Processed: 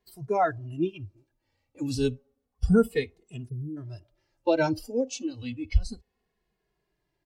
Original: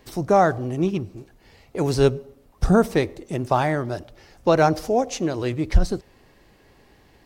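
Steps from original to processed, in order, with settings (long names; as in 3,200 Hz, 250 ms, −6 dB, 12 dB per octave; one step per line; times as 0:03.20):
time-frequency box erased 0:03.49–0:03.77, 520–10,000 Hz
noise reduction from a noise print of the clip's start 19 dB
barber-pole flanger 2.4 ms −0.31 Hz
level −2 dB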